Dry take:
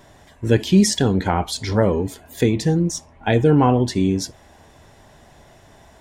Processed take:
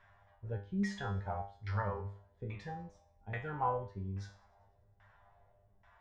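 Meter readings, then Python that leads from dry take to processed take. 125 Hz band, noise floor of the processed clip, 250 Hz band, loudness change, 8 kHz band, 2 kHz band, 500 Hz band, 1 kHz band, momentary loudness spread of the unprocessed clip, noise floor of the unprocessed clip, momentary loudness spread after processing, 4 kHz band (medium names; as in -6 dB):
-19.0 dB, -69 dBFS, -24.0 dB, -20.5 dB, under -30 dB, -15.5 dB, -23.0 dB, -14.0 dB, 10 LU, -50 dBFS, 12 LU, -28.5 dB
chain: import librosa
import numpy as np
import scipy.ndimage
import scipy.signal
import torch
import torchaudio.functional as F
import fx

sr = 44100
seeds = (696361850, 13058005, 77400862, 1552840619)

y = fx.tone_stack(x, sr, knobs='10-0-10')
y = fx.filter_lfo_lowpass(y, sr, shape='saw_down', hz=1.2, low_hz=310.0, high_hz=1700.0, q=1.6)
y = fx.peak_eq(y, sr, hz=1300.0, db=3.0, octaves=0.26)
y = fx.comb_fb(y, sr, f0_hz=100.0, decay_s=0.41, harmonics='all', damping=0.0, mix_pct=90)
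y = fx.echo_wet_highpass(y, sr, ms=98, feedback_pct=59, hz=2100.0, wet_db=-23)
y = y * librosa.db_to_amplitude(4.0)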